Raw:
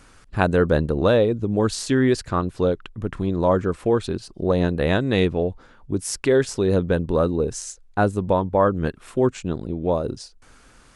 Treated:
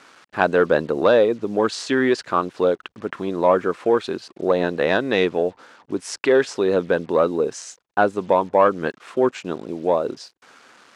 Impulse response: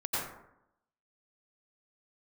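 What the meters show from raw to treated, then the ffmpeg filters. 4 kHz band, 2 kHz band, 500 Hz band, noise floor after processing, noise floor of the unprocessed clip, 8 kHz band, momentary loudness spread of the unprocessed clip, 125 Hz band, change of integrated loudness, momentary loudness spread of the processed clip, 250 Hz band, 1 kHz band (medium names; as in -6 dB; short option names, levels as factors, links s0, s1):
+1.5 dB, +4.5 dB, +2.5 dB, -65 dBFS, -52 dBFS, -4.0 dB, 9 LU, -11.0 dB, +1.0 dB, 12 LU, -2.0 dB, +4.0 dB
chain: -filter_complex "[0:a]asplit=2[s0][s1];[s1]highpass=f=720:p=1,volume=3.55,asoftclip=type=tanh:threshold=0.708[s2];[s0][s2]amix=inputs=2:normalize=0,lowpass=f=2400:p=1,volume=0.501,acrusher=bits=7:mix=0:aa=0.5,highpass=220,lowpass=7600,volume=1.12"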